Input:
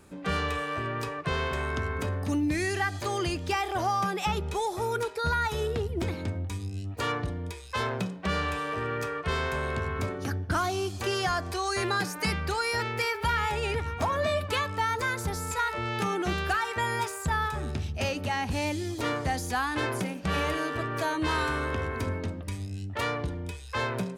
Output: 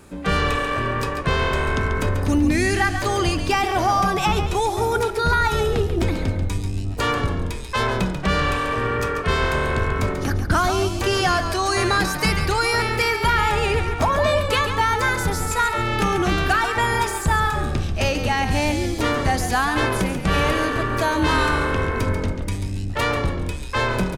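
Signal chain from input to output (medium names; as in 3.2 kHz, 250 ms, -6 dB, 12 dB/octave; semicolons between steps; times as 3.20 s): octave divider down 2 oct, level -5 dB; frequency-shifting echo 139 ms, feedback 36%, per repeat -42 Hz, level -8.5 dB; trim +8 dB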